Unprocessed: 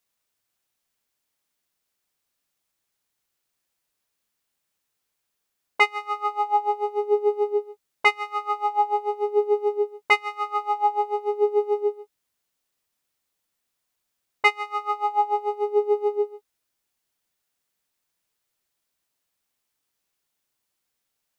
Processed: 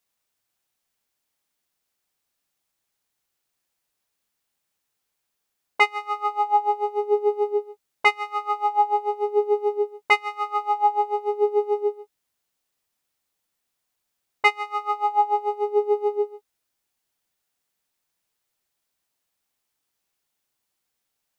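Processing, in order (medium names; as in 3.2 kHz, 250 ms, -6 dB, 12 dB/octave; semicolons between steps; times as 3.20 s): peaking EQ 790 Hz +2.5 dB 0.26 oct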